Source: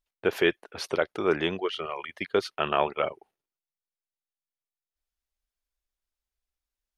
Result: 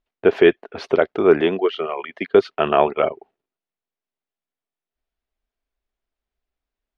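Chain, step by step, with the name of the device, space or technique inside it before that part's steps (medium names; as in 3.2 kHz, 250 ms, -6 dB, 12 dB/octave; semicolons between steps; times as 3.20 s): inside a cardboard box (low-pass 3.2 kHz 12 dB/octave; small resonant body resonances 250/400/660 Hz, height 7 dB, ringing for 25 ms); 1.41–2.35 s: high-pass 180 Hz 12 dB/octave; trim +5 dB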